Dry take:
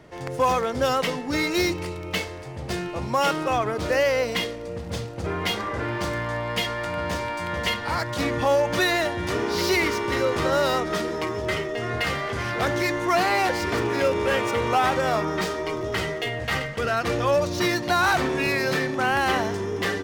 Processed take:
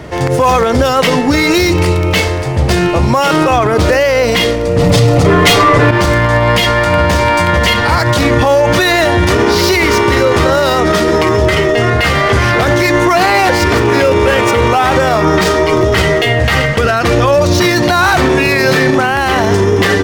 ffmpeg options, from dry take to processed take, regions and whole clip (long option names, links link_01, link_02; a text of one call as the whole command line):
ffmpeg -i in.wav -filter_complex "[0:a]asettb=1/sr,asplit=3[link_01][link_02][link_03];[link_01]atrim=end=4.784[link_04];[link_02]atrim=start=4.78:end=5.91,asetpts=PTS-STARTPTS,afade=type=in:duration=0.004:curve=qsin,afade=type=out:start_time=1.126:duration=0.004:curve=qsin,bandreject=frequency=1600:width=12,aecho=1:1:6.9:0.82,atrim=end_sample=49833,aeval=exprs='0.316*sin(PI/2*2.51*val(0)/0.316)':channel_layout=same[link_05];[link_03]atrim=start=5.906[link_06];[link_04][link_05]acrossfade=duration=0.004:curve1=hsin:curve2=qsin[link_07];[link_07][link_06]acrossfade=duration=0.004:curve1=qsin:curve2=hsin,equalizer=frequency=68:width_type=o:width=1.2:gain=6.5,alimiter=level_in=20.5dB:limit=-1dB:release=50:level=0:latency=1,volume=-1dB" out.wav